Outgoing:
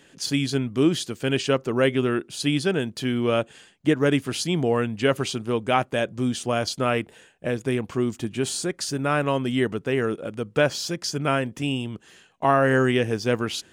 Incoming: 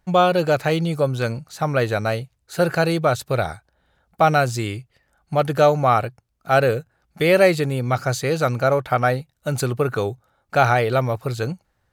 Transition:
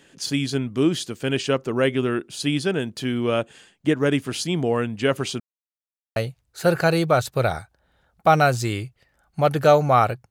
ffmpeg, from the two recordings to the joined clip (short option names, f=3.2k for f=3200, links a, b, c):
-filter_complex "[0:a]apad=whole_dur=10.3,atrim=end=10.3,asplit=2[a][b];[a]atrim=end=5.4,asetpts=PTS-STARTPTS,afade=t=out:st=5.396:d=0.004:c=hsin[c];[b]atrim=start=5.4:end=6.16,asetpts=PTS-STARTPTS,volume=0[d];[1:a]atrim=start=2.1:end=6.24,asetpts=PTS-STARTPTS,afade=t=in:d=0.004:c=hsin[e];[c][d][e]concat=n=3:v=0:a=1"